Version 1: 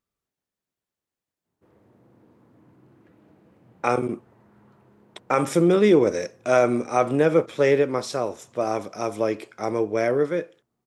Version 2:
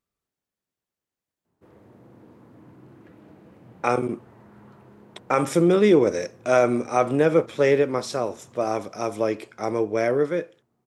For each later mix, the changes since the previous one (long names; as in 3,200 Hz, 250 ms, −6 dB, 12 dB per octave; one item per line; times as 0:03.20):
background +6.5 dB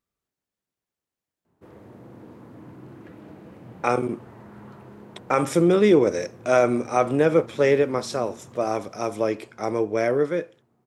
background +5.5 dB